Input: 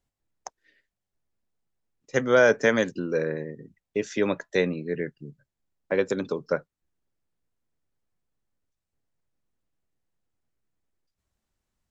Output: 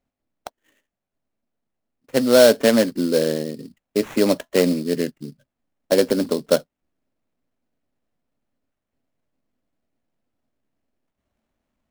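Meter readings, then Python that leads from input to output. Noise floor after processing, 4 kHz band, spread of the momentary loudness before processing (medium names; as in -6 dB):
-84 dBFS, +12.5 dB, 13 LU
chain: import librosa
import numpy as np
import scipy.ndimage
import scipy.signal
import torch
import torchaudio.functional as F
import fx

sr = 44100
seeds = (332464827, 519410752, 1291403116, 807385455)

p1 = fx.graphic_eq_15(x, sr, hz=(250, 630, 6300), db=(12, 10, 3))
p2 = fx.rider(p1, sr, range_db=3, speed_s=0.5)
p3 = p1 + F.gain(torch.from_numpy(p2), -1.0).numpy()
p4 = fx.sample_hold(p3, sr, seeds[0], rate_hz=4800.0, jitter_pct=20)
y = F.gain(torch.from_numpy(p4), -6.0).numpy()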